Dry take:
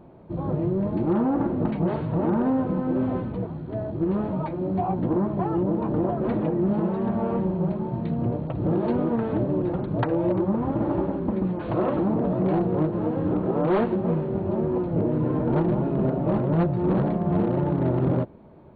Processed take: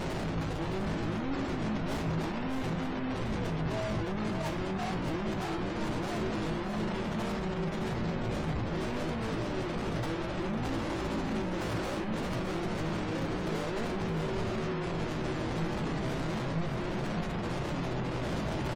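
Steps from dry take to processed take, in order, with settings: infinite clipping; notches 50/100/150 Hz; spectral gate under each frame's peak -30 dB strong; low shelf 89 Hz +10 dB; resonator 54 Hz, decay 0.38 s, harmonics all, mix 70%; echo 0.615 s -6.5 dB; gain -5.5 dB

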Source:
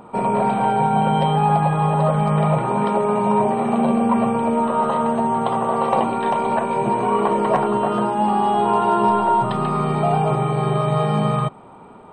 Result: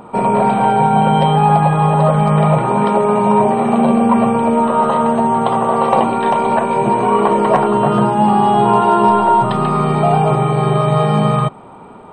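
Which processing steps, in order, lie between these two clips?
7.78–8.81 bell 140 Hz +12.5 dB 0.52 oct; gain +5.5 dB

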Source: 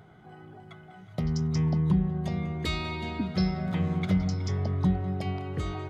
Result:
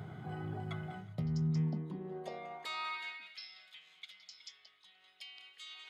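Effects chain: notch 5900 Hz, Q 15; de-hum 61.22 Hz, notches 34; reverse; compressor 10:1, threshold -40 dBFS, peak gain reduction 20.5 dB; reverse; high-pass sweep 110 Hz -> 3100 Hz, 1.32–3.49; gain +4 dB

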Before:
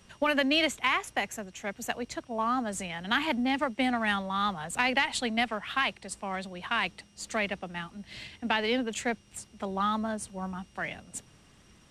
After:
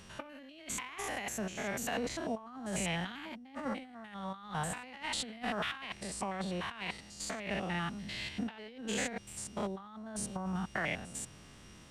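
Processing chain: stepped spectrum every 0.1 s; negative-ratio compressor -38 dBFS, ratio -0.5

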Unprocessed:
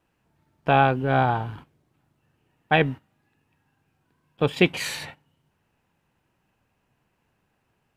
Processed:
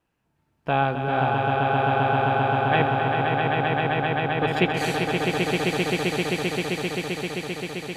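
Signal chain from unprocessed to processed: swelling echo 0.131 s, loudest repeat 8, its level -4 dB; gain -4 dB

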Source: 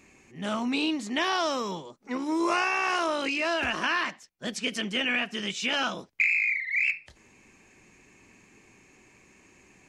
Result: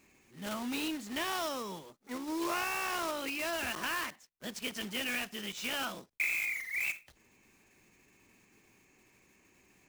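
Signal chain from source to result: block floating point 3-bit; gain -8.5 dB

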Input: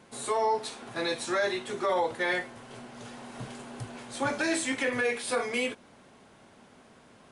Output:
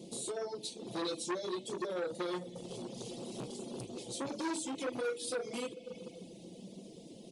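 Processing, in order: rattling part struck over -38 dBFS, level -27 dBFS; low shelf 360 Hz -8 dB; reverb RT60 1.7 s, pre-delay 5 ms, DRR 7 dB; reverb removal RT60 0.76 s; Chebyshev band-stop 460–3900 Hz, order 2; compressor 2.5:1, threshold -50 dBFS, peak gain reduction 14 dB; bell 240 Hz +9.5 dB 2.1 oct; comb 5.9 ms, depth 42%; de-hum 103 Hz, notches 3; core saturation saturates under 1200 Hz; gain +6.5 dB

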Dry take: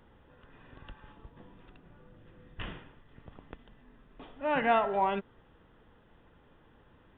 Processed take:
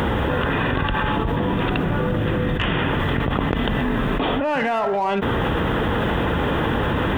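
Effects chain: HPF 48 Hz 12 dB/oct; in parallel at -5.5 dB: hard clip -33 dBFS, distortion -5 dB; on the sum: fast leveller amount 100%

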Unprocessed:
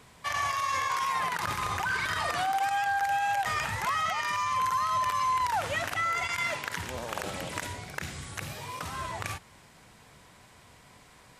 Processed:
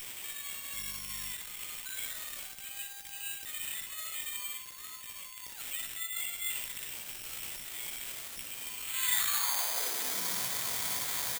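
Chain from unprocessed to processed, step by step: RIAA curve recording; negative-ratio compressor -34 dBFS, ratio -0.5; limiter -34.5 dBFS, peak gain reduction 22.5 dB; high-pass sweep 3700 Hz -> 73 Hz, 8.77–10.73; tube stage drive 38 dB, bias 0.35; 0.72–1.31 buzz 50 Hz, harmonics 4, -66 dBFS -3 dB/oct; on a send: early reflections 16 ms -6 dB, 60 ms -6 dB; on the sum: careless resampling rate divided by 8×, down filtered, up zero stuff; gain +8.5 dB

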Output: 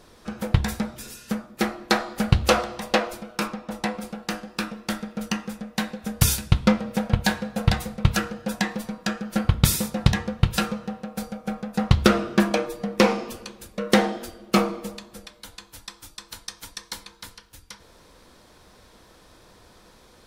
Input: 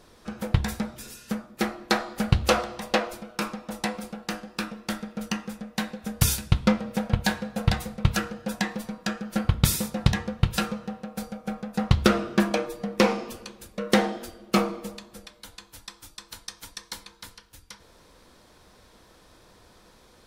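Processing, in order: 3.46–4.01 high shelf 6300 Hz -> 3700 Hz -7.5 dB; gain +2.5 dB

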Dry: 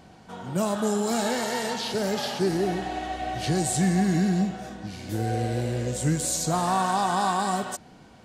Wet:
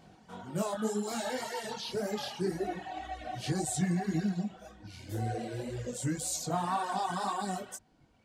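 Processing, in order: chorus 1.9 Hz, delay 18.5 ms, depth 5.1 ms; reverb removal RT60 1.7 s; gain -3 dB

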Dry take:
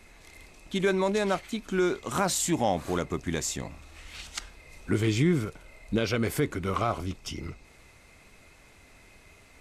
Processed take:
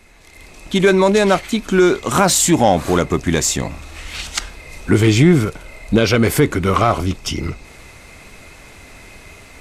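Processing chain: AGC gain up to 10 dB; in parallel at -3 dB: soft clip -12.5 dBFS, distortion -13 dB

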